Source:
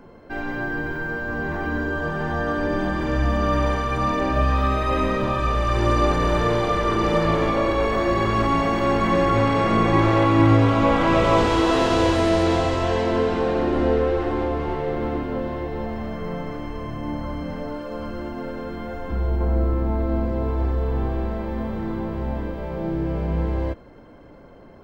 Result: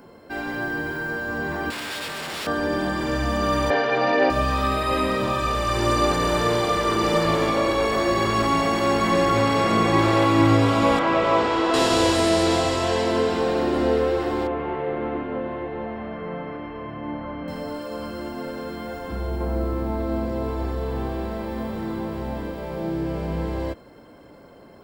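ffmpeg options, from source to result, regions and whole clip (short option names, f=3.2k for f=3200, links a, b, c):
-filter_complex "[0:a]asettb=1/sr,asplit=3[a][b][c];[a]atrim=end=1.704[d];[b]atrim=start=1.7:end=2.47,asetpts=PTS-STARTPTS,afade=t=in:d=0.004:c=qsin,afade=t=out:st=0.766:d=0.004:c=qsin,lowshelf=f=160:g=-10,aeval=exprs='0.0422*(abs(mod(val(0)/0.0422+3,4)-2)-1)':c=same[e];[c]atrim=start=2.466[f];[d][e]acrossfade=d=0.004:c1=hsin:c2=qsin[g];[g][f]acrossfade=d=0.004:c1=qsin:c2=hsin,asettb=1/sr,asplit=3[h][i][j];[h]atrim=end=3.704[k];[i]atrim=start=3.7:end=4.3,asetpts=PTS-STARTPTS,afade=t=in:d=0.004:c=qsin,afade=t=out:st=0.596:d=0.004:c=qsin,highpass=220,equalizer=f=480:t=q:w=4:g=10,equalizer=f=750:t=q:w=4:g=10,equalizer=f=1.7k:t=q:w=4:g=8,lowpass=f=4.8k:w=0.5412,lowpass=f=4.8k:w=1.3066,aecho=1:1:7.2:0.61,atrim=end_sample=26460[l];[j]atrim=start=4.296[m];[k][l]acrossfade=d=0.004:c1=hsin:c2=qsin[n];[n][m]acrossfade=d=0.004:c1=qsin:c2=hsin,asettb=1/sr,asplit=3[o][p][q];[o]atrim=end=10.994[r];[p]atrim=start=10.99:end=11.74,asetpts=PTS-STARTPTS,afade=t=in:d=0.004:c=qsin,afade=t=out:st=0.746:d=0.004:c=qsin,lowpass=6k,lowshelf=f=210:g=-10,acrossover=split=2600[s][t];[t]acompressor=threshold=-45dB:ratio=4:attack=1:release=60[u];[s][u]amix=inputs=2:normalize=0[v];[q]atrim=start=11.736[w];[r][v]acrossfade=d=0.004:c1=hsin:c2=qsin[x];[x][w]acrossfade=d=0.004:c1=qsin:c2=hsin,asettb=1/sr,asplit=3[y][z][aa];[y]atrim=end=14.474[ab];[z]atrim=start=14.47:end=17.48,asetpts=PTS-STARTPTS,afade=t=in:d=0.004:c=qsin,afade=t=out:st=3.006:d=0.004:c=qsin,lowpass=f=2.7k:w=0.5412,lowpass=f=2.7k:w=1.3066,lowshelf=f=140:g=-6[ac];[aa]atrim=start=17.476[ad];[ab][ac]acrossfade=d=0.004:c1=hsin:c2=qsin[ae];[ae][ad]acrossfade=d=0.004:c1=qsin:c2=hsin,highpass=f=100:p=1,bass=f=250:g=-1,treble=f=4k:g=12,bandreject=f=6.2k:w=8"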